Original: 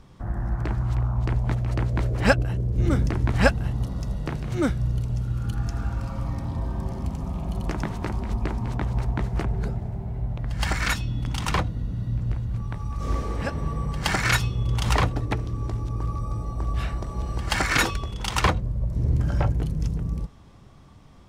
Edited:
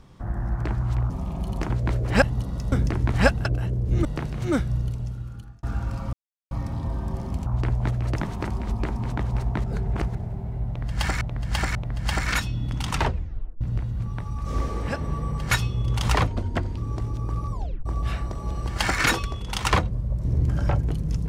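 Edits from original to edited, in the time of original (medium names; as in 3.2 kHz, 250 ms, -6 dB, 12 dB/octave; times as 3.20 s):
1.10–1.80 s: swap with 7.18–7.78 s
2.32–2.92 s: swap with 3.65–4.15 s
4.83–5.73 s: fade out
6.23 s: insert silence 0.38 s
9.26–9.77 s: reverse
10.29–10.83 s: loop, 3 plays
11.47 s: tape stop 0.68 s
14.05–14.32 s: delete
15.08–15.49 s: speed 81%
16.23 s: tape stop 0.34 s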